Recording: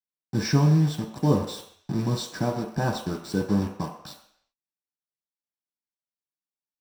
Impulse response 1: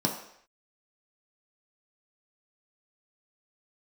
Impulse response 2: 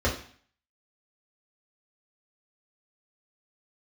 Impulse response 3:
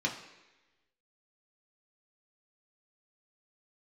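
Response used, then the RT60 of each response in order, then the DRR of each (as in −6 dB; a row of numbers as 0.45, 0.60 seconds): 1; non-exponential decay, 0.50 s, 1.1 s; −1.0, −6.0, −1.5 decibels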